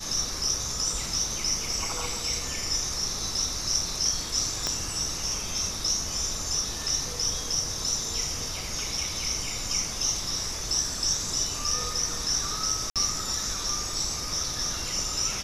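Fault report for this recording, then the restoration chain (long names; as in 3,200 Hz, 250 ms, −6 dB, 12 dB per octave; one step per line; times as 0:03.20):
0:04.67: click −12 dBFS
0:12.90–0:12.96: drop-out 57 ms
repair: click removal
repair the gap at 0:12.90, 57 ms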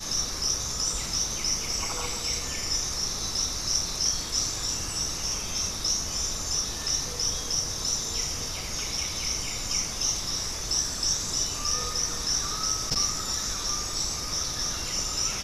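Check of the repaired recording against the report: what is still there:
0:04.67: click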